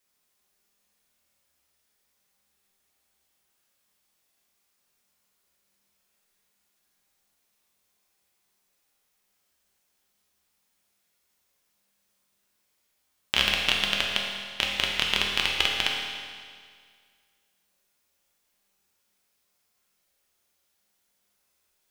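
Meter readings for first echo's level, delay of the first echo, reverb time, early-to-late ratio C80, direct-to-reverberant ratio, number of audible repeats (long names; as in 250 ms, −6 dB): no echo audible, no echo audible, 1.9 s, 2.5 dB, −2.0 dB, no echo audible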